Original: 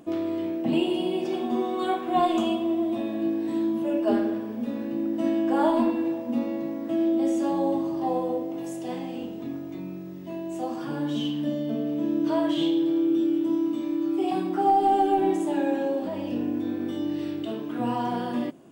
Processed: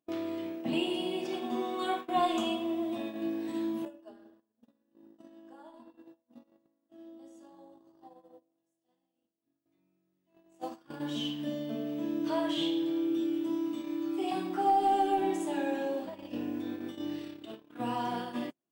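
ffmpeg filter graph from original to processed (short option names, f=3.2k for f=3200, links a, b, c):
-filter_complex "[0:a]asettb=1/sr,asplit=3[a][b][c];[a]atrim=end=3.854[d];[b]atrim=start=3.85:end=9.66,asetpts=PTS-STARTPTS,afade=t=in:d=0.004:c=qsin,afade=t=out:st=5.806:d=0.004:c=qsin,agate=range=-33dB:threshold=-26dB:ratio=3:release=100:detection=peak,equalizer=f=2.3k:w=4.7:g=-12.5,acompressor=threshold=-28dB:ratio=12:attack=3.2:release=140:knee=1:detection=peak[e];[c]atrim=start=9.656[f];[d][e]acrossfade=d=0.004:c1=hsin:c2=qsin[g];[g][f]acrossfade=d=0.004:c1=qsin:c2=hsin,agate=range=-32dB:threshold=-29dB:ratio=16:detection=peak,tiltshelf=f=910:g=-4,volume=-4.5dB"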